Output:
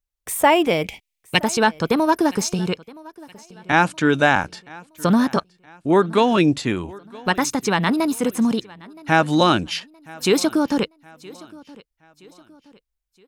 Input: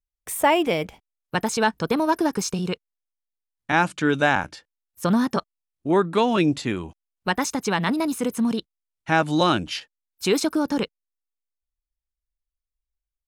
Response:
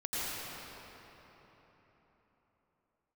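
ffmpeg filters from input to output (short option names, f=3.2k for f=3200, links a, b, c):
-filter_complex "[0:a]asettb=1/sr,asplit=3[a][b][c];[a]atrim=end=0.844[d];[b]atrim=start=0.84:end=1.39,asetpts=PTS-STARTPTS,afade=t=in:d=0.004:c=qsin,afade=t=out:st=0.546:d=0.004:c=qsin,highshelf=f=1.8k:t=q:w=3:g=7.5[e];[c]atrim=start=1.386[f];[d][e]acrossfade=d=0.004:c1=hsin:c2=qsin[g];[g][f]acrossfade=d=0.004:c1=qsin:c2=hsin,asplit=2[h][i];[i]aecho=0:1:970|1940|2910:0.075|0.0307|0.0126[j];[h][j]amix=inputs=2:normalize=0,volume=3.5dB"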